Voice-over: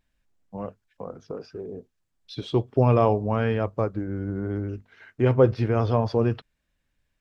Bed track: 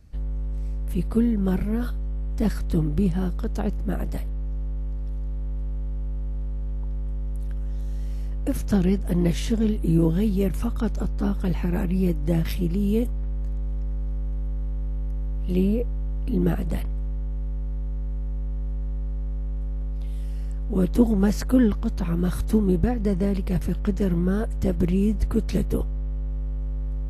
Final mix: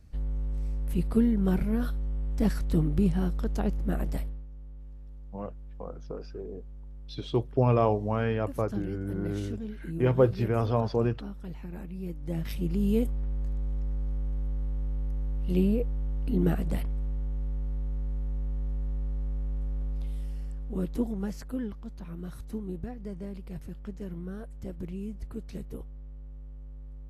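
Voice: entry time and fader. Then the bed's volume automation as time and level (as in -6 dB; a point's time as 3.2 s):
4.80 s, -4.0 dB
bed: 4.22 s -2.5 dB
4.47 s -15.5 dB
11.98 s -15.5 dB
12.82 s -3 dB
19.98 s -3 dB
21.61 s -15.5 dB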